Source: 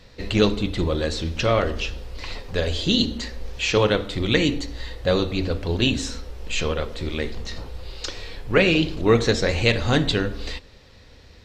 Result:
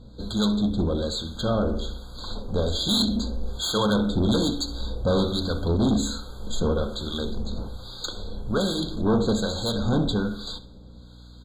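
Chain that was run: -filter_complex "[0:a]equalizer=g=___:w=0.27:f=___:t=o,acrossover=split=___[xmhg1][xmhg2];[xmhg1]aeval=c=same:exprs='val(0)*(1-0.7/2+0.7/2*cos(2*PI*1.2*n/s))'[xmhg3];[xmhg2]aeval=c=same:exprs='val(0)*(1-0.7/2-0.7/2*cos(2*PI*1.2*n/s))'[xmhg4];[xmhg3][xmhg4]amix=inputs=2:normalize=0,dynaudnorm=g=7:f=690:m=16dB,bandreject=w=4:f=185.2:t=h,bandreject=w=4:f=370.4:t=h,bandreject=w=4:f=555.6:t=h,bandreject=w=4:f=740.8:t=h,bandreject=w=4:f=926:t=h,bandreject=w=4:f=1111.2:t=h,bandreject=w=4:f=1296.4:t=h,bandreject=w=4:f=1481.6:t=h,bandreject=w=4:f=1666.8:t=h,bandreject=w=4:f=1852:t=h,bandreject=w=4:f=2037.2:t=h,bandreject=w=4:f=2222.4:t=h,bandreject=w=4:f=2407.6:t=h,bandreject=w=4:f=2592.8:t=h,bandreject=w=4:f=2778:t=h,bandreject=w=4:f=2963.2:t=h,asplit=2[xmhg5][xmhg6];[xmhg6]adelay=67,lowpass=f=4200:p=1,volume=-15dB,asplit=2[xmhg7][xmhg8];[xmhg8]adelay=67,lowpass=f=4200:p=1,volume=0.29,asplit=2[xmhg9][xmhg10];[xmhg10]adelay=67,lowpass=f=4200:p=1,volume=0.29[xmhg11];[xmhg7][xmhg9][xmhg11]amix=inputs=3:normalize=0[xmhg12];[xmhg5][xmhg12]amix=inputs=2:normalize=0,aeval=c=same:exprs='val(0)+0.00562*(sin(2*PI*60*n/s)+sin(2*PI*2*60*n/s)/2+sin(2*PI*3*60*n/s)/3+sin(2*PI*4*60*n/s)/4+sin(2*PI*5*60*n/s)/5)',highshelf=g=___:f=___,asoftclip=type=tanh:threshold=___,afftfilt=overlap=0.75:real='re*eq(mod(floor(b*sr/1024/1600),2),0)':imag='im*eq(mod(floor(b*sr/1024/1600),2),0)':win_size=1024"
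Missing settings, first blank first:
12.5, 210, 820, 3.5, 2400, -17dB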